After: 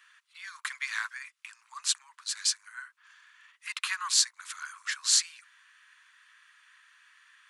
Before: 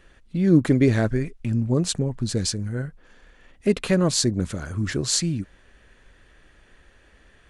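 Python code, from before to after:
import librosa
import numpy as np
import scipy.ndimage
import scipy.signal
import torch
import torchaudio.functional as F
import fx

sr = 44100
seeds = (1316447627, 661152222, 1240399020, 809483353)

y = scipy.signal.sosfilt(scipy.signal.butter(12, 1000.0, 'highpass', fs=sr, output='sos'), x)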